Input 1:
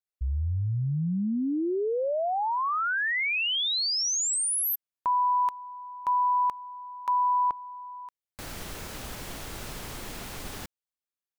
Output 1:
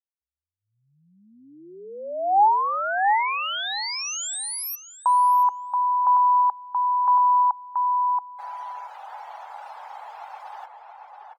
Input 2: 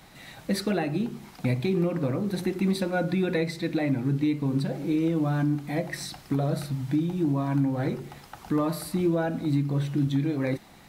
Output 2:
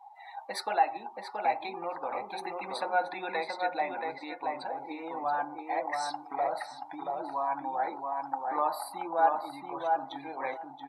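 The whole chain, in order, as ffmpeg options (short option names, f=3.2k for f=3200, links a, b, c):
-filter_complex "[0:a]highpass=f=830:t=q:w=6.7,afftdn=nr=27:nf=-41,asplit=2[a][b];[b]adelay=678,lowpass=f=1.9k:p=1,volume=-3dB,asplit=2[c][d];[d]adelay=678,lowpass=f=1.9k:p=1,volume=0.18,asplit=2[e][f];[f]adelay=678,lowpass=f=1.9k:p=1,volume=0.18[g];[a][c][e][g]amix=inputs=4:normalize=0,volume=-3.5dB"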